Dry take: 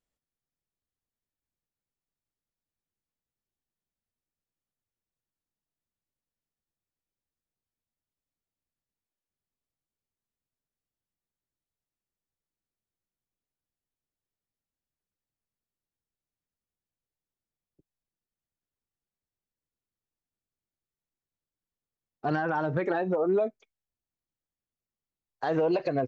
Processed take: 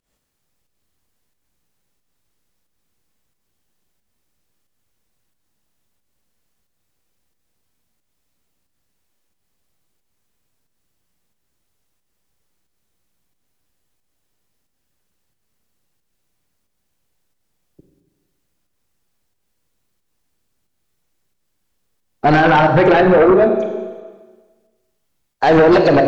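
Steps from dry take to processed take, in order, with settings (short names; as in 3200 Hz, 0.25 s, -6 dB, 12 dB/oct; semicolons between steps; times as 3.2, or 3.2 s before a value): pump 90 bpm, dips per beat 1, -17 dB, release 0.17 s; Schroeder reverb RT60 1.4 s, combs from 31 ms, DRR 4.5 dB; sine folder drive 7 dB, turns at -14.5 dBFS; gain +8 dB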